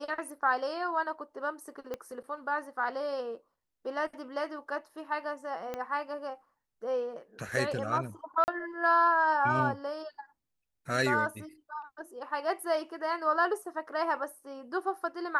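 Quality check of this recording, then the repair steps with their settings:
1.94 s: pop -23 dBFS
5.74 s: pop -22 dBFS
8.44–8.48 s: dropout 39 ms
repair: de-click; interpolate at 8.44 s, 39 ms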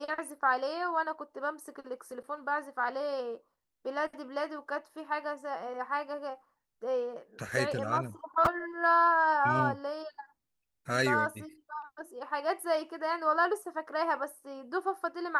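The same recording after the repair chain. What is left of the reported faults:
1.94 s: pop
5.74 s: pop

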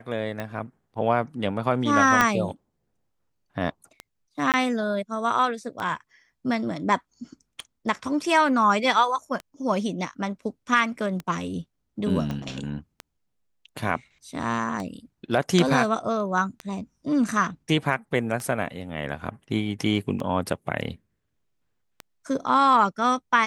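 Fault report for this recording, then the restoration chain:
tick 33 1/3 rpm -18 dBFS
2.21 s: pop -5 dBFS
4.52–4.54 s: dropout 18 ms
12.31 s: pop -18 dBFS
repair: de-click; interpolate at 4.52 s, 18 ms

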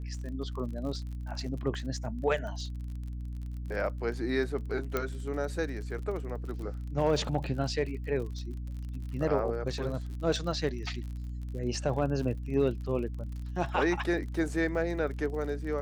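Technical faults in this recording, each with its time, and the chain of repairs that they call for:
crackle 40 per s -39 dBFS
hum 60 Hz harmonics 5 -37 dBFS
4.97 s: pop -15 dBFS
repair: de-click; de-hum 60 Hz, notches 5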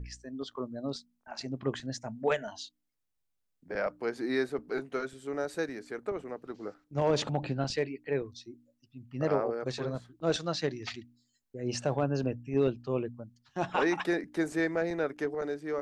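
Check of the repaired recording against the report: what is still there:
4.97 s: pop

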